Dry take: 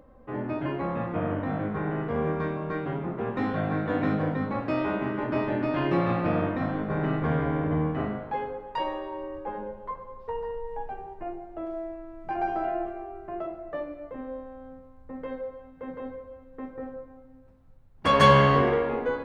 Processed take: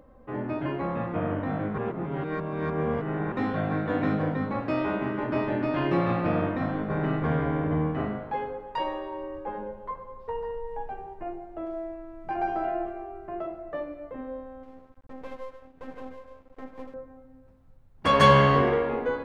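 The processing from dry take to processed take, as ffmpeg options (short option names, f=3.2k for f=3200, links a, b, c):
-filter_complex "[0:a]asettb=1/sr,asplit=3[a][b][c];[a]atrim=end=14.634[d];[b]atrim=start=14.63:end=16.94,asetpts=PTS-STARTPTS,afade=t=in:d=0.004:c=qsin,afade=t=out:st=2.306:d=0.004:c=qsin,aeval=exprs='max(val(0),0)':c=same[e];[c]atrim=start=16.936[f];[d][e]acrossfade=d=0.004:c1=hsin:c2=qsin[g];[g][f]acrossfade=d=0.004:c1=qsin:c2=hsin,asplit=3[h][i][j];[h]atrim=end=1.782[k];[i]atrim=start=1.778:end=3.322,asetpts=PTS-STARTPTS,areverse[l];[j]atrim=start=3.318[m];[k][l]acrossfade=d=0.004:c1=hsin:c2=hsin[n];[n][m]acrossfade=d=0.004:c1=hsin:c2=hsin"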